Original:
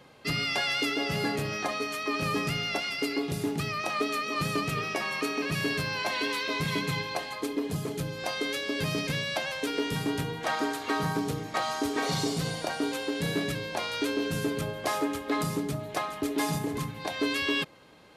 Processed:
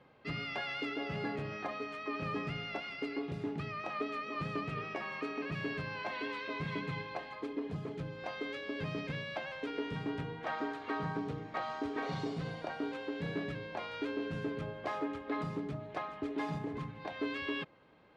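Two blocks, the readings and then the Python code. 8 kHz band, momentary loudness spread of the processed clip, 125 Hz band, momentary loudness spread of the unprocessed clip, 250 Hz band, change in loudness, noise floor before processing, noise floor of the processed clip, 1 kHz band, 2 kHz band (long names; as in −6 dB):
below −25 dB, 3 LU, −7.5 dB, 4 LU, −7.5 dB, −9.0 dB, −41 dBFS, −48 dBFS, −7.5 dB, −9.0 dB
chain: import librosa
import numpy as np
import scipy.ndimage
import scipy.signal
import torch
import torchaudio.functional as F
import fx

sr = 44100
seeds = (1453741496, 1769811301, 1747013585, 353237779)

y = scipy.signal.sosfilt(scipy.signal.butter(2, 2500.0, 'lowpass', fs=sr, output='sos'), x)
y = y * librosa.db_to_amplitude(-7.5)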